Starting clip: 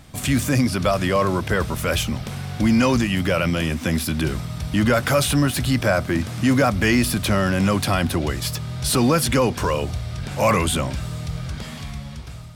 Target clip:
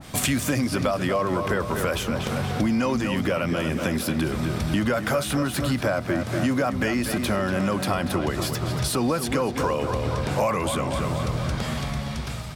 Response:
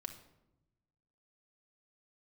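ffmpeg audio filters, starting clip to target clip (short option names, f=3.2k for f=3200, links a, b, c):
-filter_complex "[0:a]lowshelf=f=170:g=-9.5,asplit=2[a][b];[b]adelay=238,lowpass=f=4.1k:p=1,volume=-9.5dB,asplit=2[c][d];[d]adelay=238,lowpass=f=4.1k:p=1,volume=0.54,asplit=2[e][f];[f]adelay=238,lowpass=f=4.1k:p=1,volume=0.54,asplit=2[g][h];[h]adelay=238,lowpass=f=4.1k:p=1,volume=0.54,asplit=2[i][j];[j]adelay=238,lowpass=f=4.1k:p=1,volume=0.54,asplit=2[k][l];[l]adelay=238,lowpass=f=4.1k:p=1,volume=0.54[m];[c][e][g][i][k][m]amix=inputs=6:normalize=0[n];[a][n]amix=inputs=2:normalize=0,acompressor=threshold=-29dB:ratio=6,adynamicequalizer=threshold=0.00501:dfrequency=1600:dqfactor=0.7:tfrequency=1600:tqfactor=0.7:attack=5:release=100:ratio=0.375:range=3:mode=cutabove:tftype=highshelf,volume=8.5dB"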